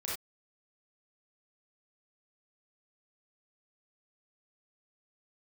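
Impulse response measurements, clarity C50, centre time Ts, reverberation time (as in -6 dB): 0.0 dB, 50 ms, not exponential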